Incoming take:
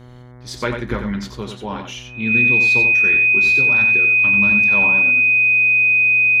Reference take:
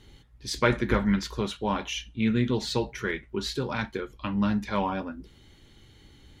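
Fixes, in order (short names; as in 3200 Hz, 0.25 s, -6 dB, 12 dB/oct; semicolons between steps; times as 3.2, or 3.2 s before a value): de-hum 123.6 Hz, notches 18; notch 2500 Hz, Q 30; inverse comb 90 ms -7 dB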